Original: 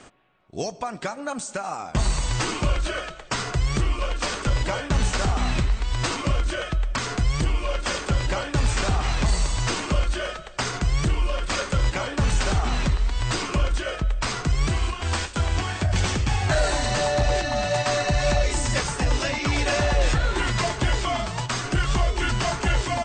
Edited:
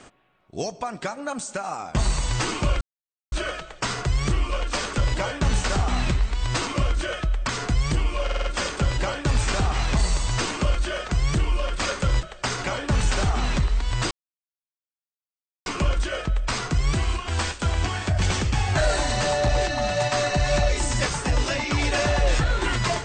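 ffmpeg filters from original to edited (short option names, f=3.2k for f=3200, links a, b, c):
-filter_complex "[0:a]asplit=10[a][b][c][d][e][f][g][h][i][j];[a]atrim=end=2.81,asetpts=PTS-STARTPTS,afade=t=out:st=2.806:d=0.004:c=hsin,apad=pad_dur=0.51[k];[b]atrim=start=2.81:end=7.782,asetpts=PTS-STARTPTS,afade=t=in:d=0.004:c=hsin[l];[c]atrim=start=7.728:end=7.782[m];[d]atrim=start=7.728:end=7.782[n];[e]atrim=start=7.728:end=7.782[o];[f]atrim=start=7.728:end=10.382[p];[g]atrim=start=10.788:end=11.932[q];[h]atrim=start=10.378:end=10.792[r];[i]atrim=start=11.928:end=13.4,asetpts=PTS-STARTPTS,afade=t=out:st=1.468:d=0.004:c=hsin,apad=pad_dur=1.55[s];[j]atrim=start=13.4,asetpts=PTS-STARTPTS,afade=t=in:d=0.004:c=hsin[t];[k][l]concat=n=2:v=0:a=1[u];[u][m]acrossfade=d=0.004:c1=hsin:c2=hsin[v];[v][n]acrossfade=d=0.004:c1=hsin:c2=hsin[w];[w][o]acrossfade=d=0.004:c1=hsin:c2=hsin[x];[x][p]acrossfade=d=0.004:c1=hsin:c2=hsin[y];[y][q]acrossfade=d=0.004:c1=hsin:c2=hsin[z];[z][r]acrossfade=d=0.004:c1=hsin:c2=hsin[aa];[s][t]concat=n=2:v=0:a=1[ab];[aa][ab]acrossfade=d=0.004:c1=hsin:c2=hsin"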